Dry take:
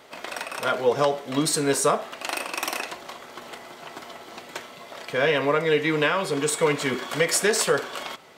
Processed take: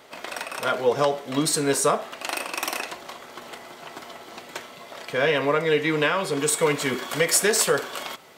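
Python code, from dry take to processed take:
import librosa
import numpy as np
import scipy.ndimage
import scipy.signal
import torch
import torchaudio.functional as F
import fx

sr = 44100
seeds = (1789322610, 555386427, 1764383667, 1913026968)

y = fx.high_shelf(x, sr, hz=9800.0, db=fx.steps((0.0, 2.5), (6.38, 9.5)))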